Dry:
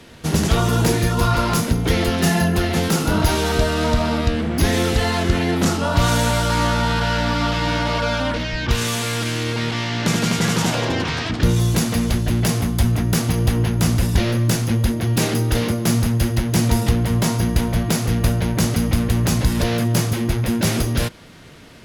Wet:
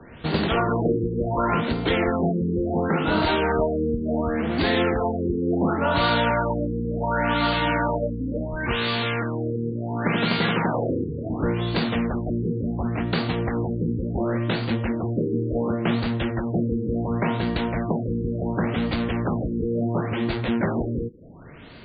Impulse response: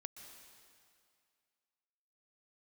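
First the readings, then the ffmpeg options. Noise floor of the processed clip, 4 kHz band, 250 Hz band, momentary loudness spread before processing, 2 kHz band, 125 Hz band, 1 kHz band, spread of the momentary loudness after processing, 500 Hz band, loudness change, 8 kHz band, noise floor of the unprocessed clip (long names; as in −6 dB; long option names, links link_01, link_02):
−31 dBFS, −7.0 dB, −3.0 dB, 3 LU, −4.0 dB, −8.5 dB, −2.5 dB, 5 LU, −1.0 dB, −5.0 dB, below −40 dB, −26 dBFS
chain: -filter_complex "[0:a]acrossover=split=220|3000[link_01][link_02][link_03];[link_01]acompressor=threshold=-31dB:ratio=4[link_04];[link_04][link_02][link_03]amix=inputs=3:normalize=0,afftfilt=real='re*lt(b*sr/1024,490*pow(4800/490,0.5+0.5*sin(2*PI*0.7*pts/sr)))':imag='im*lt(b*sr/1024,490*pow(4800/490,0.5+0.5*sin(2*PI*0.7*pts/sr)))':win_size=1024:overlap=0.75"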